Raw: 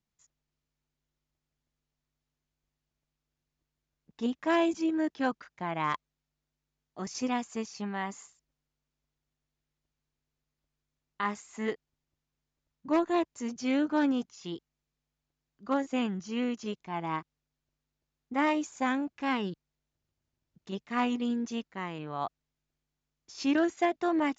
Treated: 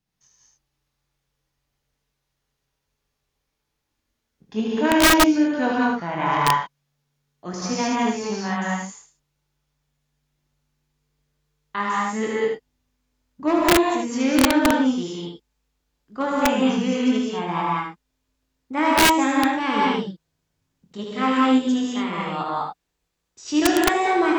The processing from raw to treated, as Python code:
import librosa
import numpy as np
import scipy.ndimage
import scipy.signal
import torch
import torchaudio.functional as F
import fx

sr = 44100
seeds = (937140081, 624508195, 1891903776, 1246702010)

y = fx.speed_glide(x, sr, from_pct=91, to_pct=109)
y = fx.room_early_taps(y, sr, ms=(23, 76), db=(-6.5, -4.0))
y = fx.rev_gated(y, sr, seeds[0], gate_ms=230, shape='rising', drr_db=-3.5)
y = (np.mod(10.0 ** (12.5 / 20.0) * y + 1.0, 2.0) - 1.0) / 10.0 ** (12.5 / 20.0)
y = F.gain(torch.from_numpy(y), 4.0).numpy()